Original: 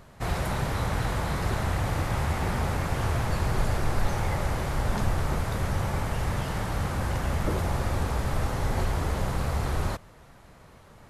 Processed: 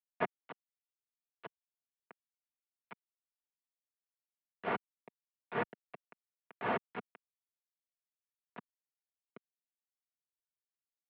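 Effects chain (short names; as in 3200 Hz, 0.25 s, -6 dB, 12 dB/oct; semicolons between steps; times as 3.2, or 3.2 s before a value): flipped gate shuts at -19 dBFS, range -25 dB; pump 92 bpm, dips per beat 1, -10 dB, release 0.254 s; sample gate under -38.5 dBFS; comb 4 ms, depth 49%; mistuned SSB -67 Hz 280–2900 Hz; gain +3 dB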